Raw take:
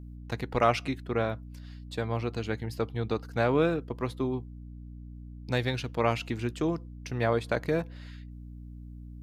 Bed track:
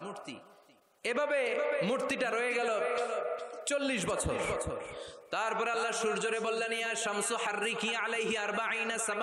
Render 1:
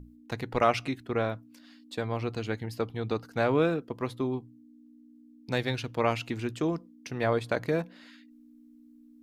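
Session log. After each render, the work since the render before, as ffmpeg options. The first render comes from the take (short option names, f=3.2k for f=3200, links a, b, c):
-af "bandreject=f=60:t=h:w=6,bandreject=f=120:t=h:w=6,bandreject=f=180:t=h:w=6"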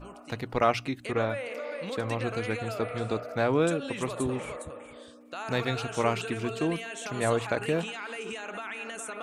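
-filter_complex "[1:a]volume=-5dB[a];[0:a][a]amix=inputs=2:normalize=0"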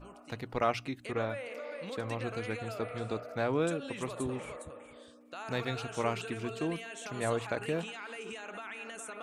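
-af "volume=-5.5dB"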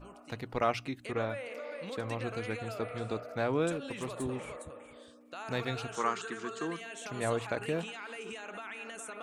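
-filter_complex "[0:a]asettb=1/sr,asplit=3[a][b][c];[a]atrim=end=3.724[d];[b]atrim=start=3.72:end=4.24,asetpts=PTS-STARTPTS,afade=t=in:d=0.004:c=qsin,afade=t=out:st=0.516:d=0.004:c=qsin,asoftclip=type=hard:threshold=-30.5dB[e];[c]atrim=start=4.236[f];[d][e]acrossfade=d=0.004:c1=hsin:c2=qsin[g];[g][f]acrossfade=d=0.004:c1=qsin:c2=hsin,asettb=1/sr,asplit=3[h][i][j];[h]atrim=end=5.964[k];[i]atrim=start=5.96:end=6.81,asetpts=PTS-STARTPTS,afade=t=in:d=0.004:c=qsin,afade=t=out:st=0.846:d=0.004:c=qsin,highpass=f=190:w=0.5412,highpass=f=190:w=1.3066,equalizer=f=270:t=q:w=4:g=-8,equalizer=f=610:t=q:w=4:g=-9,equalizer=f=1.2k:t=q:w=4:g=8,equalizer=f=1.7k:t=q:w=4:g=6,equalizer=f=2.5k:t=q:w=4:g=-8,equalizer=f=6.8k:t=q:w=4:g=7,lowpass=f=9k:w=0.5412,lowpass=f=9k:w=1.3066[l];[j]atrim=start=6.806[m];[k][l]acrossfade=d=0.004:c1=hsin:c2=qsin[n];[n][m]acrossfade=d=0.004:c1=qsin:c2=hsin"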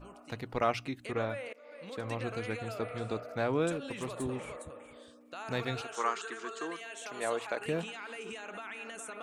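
-filter_complex "[0:a]asettb=1/sr,asplit=3[a][b][c];[a]atrim=end=5.814[d];[b]atrim=start=5.81:end=7.66,asetpts=PTS-STARTPTS,afade=t=in:d=0.004:c=qsin,afade=t=out:st=1.846:d=0.004:c=qsin,highpass=370[e];[c]atrim=start=7.656[f];[d][e]acrossfade=d=0.004:c1=hsin:c2=qsin[g];[g][f]acrossfade=d=0.004:c1=qsin:c2=hsin,asplit=2[h][i];[h]atrim=end=1.53,asetpts=PTS-STARTPTS,afade=t=out:st=1.526:d=0.004:c=hsin:silence=0.0891251[j];[i]atrim=start=1.53,asetpts=PTS-STARTPTS,afade=t=in:d=0.6:silence=0.0891251[k];[j][k]concat=n=2:v=0:a=1"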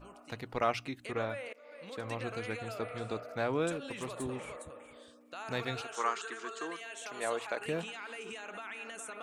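-af "lowshelf=f=470:g=-3.5"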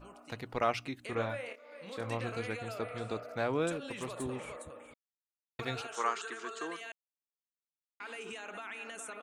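-filter_complex "[0:a]asplit=3[a][b][c];[a]afade=t=out:st=1.11:d=0.02[d];[b]asplit=2[e][f];[f]adelay=26,volume=-7dB[g];[e][g]amix=inputs=2:normalize=0,afade=t=in:st=1.11:d=0.02,afade=t=out:st=2.46:d=0.02[h];[c]afade=t=in:st=2.46:d=0.02[i];[d][h][i]amix=inputs=3:normalize=0,asplit=5[j][k][l][m][n];[j]atrim=end=4.94,asetpts=PTS-STARTPTS,afade=t=out:st=4.936:d=0.004:c=hsin[o];[k]atrim=start=4.94:end=5.59,asetpts=PTS-STARTPTS,volume=0[p];[l]atrim=start=5.59:end=6.92,asetpts=PTS-STARTPTS,afade=t=in:d=0.004:c=hsin,afade=t=out:st=1.326:d=0.004:c=hsin[q];[m]atrim=start=6.92:end=8,asetpts=PTS-STARTPTS,volume=0[r];[n]atrim=start=8,asetpts=PTS-STARTPTS,afade=t=in:d=0.004:c=hsin[s];[o][p][q][r][s]concat=n=5:v=0:a=1"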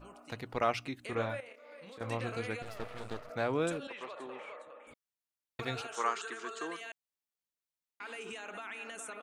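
-filter_complex "[0:a]asettb=1/sr,asplit=3[a][b][c];[a]atrim=end=1.404[d];[b]atrim=start=1.4:end=2.01,asetpts=PTS-STARTPTS,afade=t=in:d=0.004:c=qsin,afade=t=out:st=0.606:d=0.004:c=qsin,acompressor=threshold=-47dB:ratio=6:attack=3.2:release=140:knee=1:detection=peak[e];[c]atrim=start=2.006[f];[d][e]acrossfade=d=0.004:c1=hsin:c2=qsin[g];[g][f]acrossfade=d=0.004:c1=qsin:c2=hsin,asettb=1/sr,asplit=3[h][i][j];[h]atrim=end=2.624[k];[i]atrim=start=2.62:end=3.3,asetpts=PTS-STARTPTS,afade=t=in:d=0.004:c=qsin,afade=t=out:st=0.676:d=0.004:c=qsin,aeval=exprs='max(val(0),0)':c=same[l];[j]atrim=start=3.296[m];[k][l]acrossfade=d=0.004:c1=hsin:c2=qsin[n];[n][m]acrossfade=d=0.004:c1=qsin:c2=hsin,asettb=1/sr,asplit=3[o][p][q];[o]atrim=end=3.874[r];[p]atrim=start=3.87:end=4.87,asetpts=PTS-STARTPTS,afade=t=in:d=0.004:c=qsin,afade=t=out:st=0.996:d=0.004:c=qsin,highpass=520,lowpass=3.3k[s];[q]atrim=start=4.866[t];[r][s]acrossfade=d=0.004:c1=hsin:c2=qsin[u];[u][t]acrossfade=d=0.004:c1=qsin:c2=hsin"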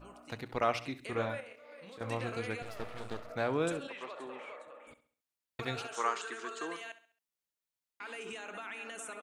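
-af "aecho=1:1:67|134|201|268:0.178|0.0711|0.0285|0.0114"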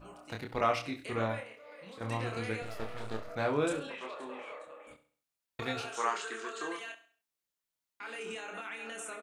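-filter_complex "[0:a]asplit=2[a][b];[b]adelay=27,volume=-3.5dB[c];[a][c]amix=inputs=2:normalize=0,aecho=1:1:101:0.0668"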